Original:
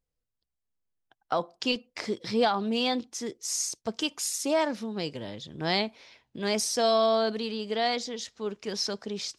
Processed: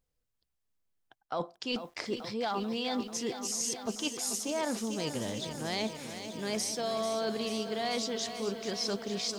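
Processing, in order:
reversed playback
downward compressor, threshold −34 dBFS, peak gain reduction 13.5 dB
reversed playback
feedback echo at a low word length 440 ms, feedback 80%, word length 10 bits, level −10 dB
level +3 dB

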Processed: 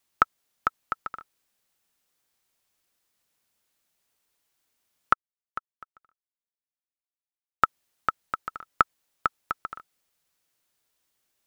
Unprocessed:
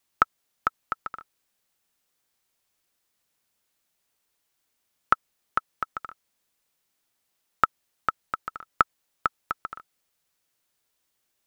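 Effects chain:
0:05.13–0:07.64: expander for the loud parts 2.5 to 1, over −35 dBFS

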